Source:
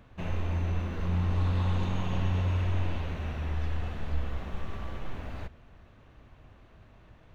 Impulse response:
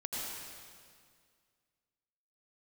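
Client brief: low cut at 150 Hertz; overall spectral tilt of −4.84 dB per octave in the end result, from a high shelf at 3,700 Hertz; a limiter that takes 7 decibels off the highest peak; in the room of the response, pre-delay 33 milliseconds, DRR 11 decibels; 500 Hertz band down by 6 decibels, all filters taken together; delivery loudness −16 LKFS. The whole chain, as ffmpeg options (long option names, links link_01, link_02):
-filter_complex "[0:a]highpass=150,equalizer=frequency=500:width_type=o:gain=-8,highshelf=frequency=3700:gain=4.5,alimiter=level_in=8dB:limit=-24dB:level=0:latency=1,volume=-8dB,asplit=2[link_01][link_02];[1:a]atrim=start_sample=2205,adelay=33[link_03];[link_02][link_03]afir=irnorm=-1:irlink=0,volume=-13.5dB[link_04];[link_01][link_04]amix=inputs=2:normalize=0,volume=25.5dB"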